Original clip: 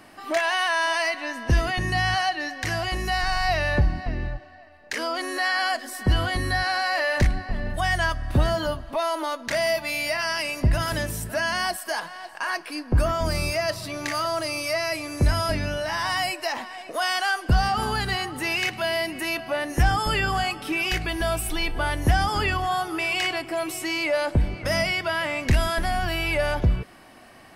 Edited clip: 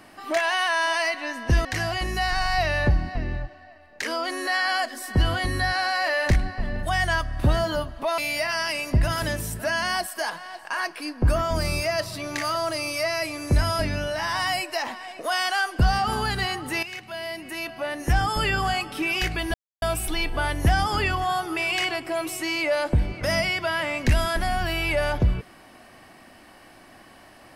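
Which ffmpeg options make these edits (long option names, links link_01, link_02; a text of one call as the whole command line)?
ffmpeg -i in.wav -filter_complex "[0:a]asplit=5[link_01][link_02][link_03][link_04][link_05];[link_01]atrim=end=1.652[link_06];[link_02]atrim=start=2.558:end=9.092[link_07];[link_03]atrim=start=9.878:end=18.53,asetpts=PTS-STARTPTS,afade=type=out:start_time=8.648:duration=0.004:curve=hsin:silence=0.223872[link_08];[link_04]atrim=start=18.53:end=21.24,asetpts=PTS-STARTPTS,afade=type=in:duration=1.65:silence=0.223872,afade=type=out:start_time=2.706:duration=0.004:curve=hsin,apad=pad_dur=0.28[link_09];[link_05]atrim=start=21.24,asetpts=PTS-STARTPTS,afade=type=in:duration=0.004:curve=hsin[link_10];[link_06][link_07]acrossfade=duration=0.004:curve1=hsin:curve2=hsin[link_11];[link_08][link_09][link_10]concat=n=3:v=0:a=1[link_12];[link_11][link_12]acrossfade=duration=0.004:curve1=hsin:curve2=hsin" out.wav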